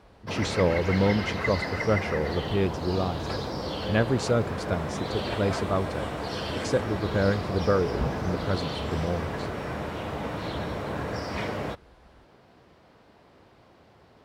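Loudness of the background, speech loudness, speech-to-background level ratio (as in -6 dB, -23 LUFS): -32.0 LUFS, -28.5 LUFS, 3.5 dB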